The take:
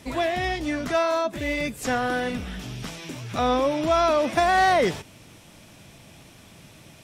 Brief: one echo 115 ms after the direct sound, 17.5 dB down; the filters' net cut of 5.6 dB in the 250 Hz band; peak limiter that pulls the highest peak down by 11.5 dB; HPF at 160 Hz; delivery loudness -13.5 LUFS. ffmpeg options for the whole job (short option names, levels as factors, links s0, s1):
-af "highpass=160,equalizer=f=250:t=o:g=-6.5,alimiter=limit=0.0944:level=0:latency=1,aecho=1:1:115:0.133,volume=6.68"